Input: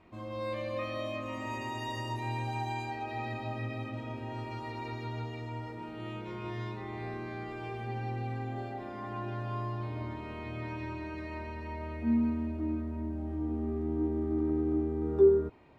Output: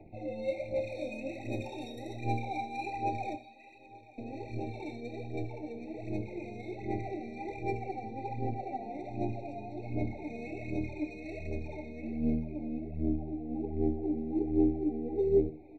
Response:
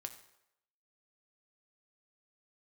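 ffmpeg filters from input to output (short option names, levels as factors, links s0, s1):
-filter_complex "[0:a]asettb=1/sr,asplit=3[s0][s1][s2];[s0]atrim=end=3.354[s3];[s1]atrim=start=3.35:end=4.18,asetpts=PTS-STARTPTS,afade=t=in:d=0.004:c=qsin,afade=t=out:st=0.826:d=0.004:c=qsin,aderivative[s4];[s2]atrim=start=4.176[s5];[s3][s4]acrossfade=d=0.004:c1=hsin:c2=qsin[s6];[s6][s5]acrossfade=d=0.004:c1=qsin:c2=hsin,asplit=2[s7][s8];[s8]acompressor=threshold=0.01:ratio=6,volume=1.41[s9];[s7][s9]amix=inputs=2:normalize=0,asettb=1/sr,asplit=3[s10][s11][s12];[s10]atrim=end=0.524[s13];[s11]atrim=start=0.52:end=0.95,asetpts=PTS-STARTPTS,afade=t=in:d=0.004:c=qsin,afade=t=out:st=0.426:d=0.004:c=qsin,asoftclip=type=hard:threshold=0.0251[s14];[s12]atrim=start=0.946[s15];[s13][s14]acrossfade=d=0.004:c1=hsin:c2=qsin[s16];[s16][s15]acrossfade=d=0.004:c1=qsin:c2=hsin,aphaser=in_gain=1:out_gain=1:delay=4.5:decay=0.72:speed=1.3:type=sinusoidal,acrossover=split=240|1600[s17][s18][s19];[s17]aeval=exprs='max(val(0),0)':c=same[s20];[s20][s18][s19]amix=inputs=3:normalize=0,adynamicsmooth=sensitivity=5.5:basefreq=2100,asuperstop=centerf=1700:order=8:qfactor=2.6,aecho=1:1:883:0.0891[s21];[1:a]atrim=start_sample=2205,afade=t=out:st=0.13:d=0.01,atrim=end_sample=6174,asetrate=37044,aresample=44100[s22];[s21][s22]afir=irnorm=-1:irlink=0,afftfilt=real='re*eq(mod(floor(b*sr/1024/900),2),0)':imag='im*eq(mod(floor(b*sr/1024/900),2),0)':win_size=1024:overlap=0.75,volume=0.75"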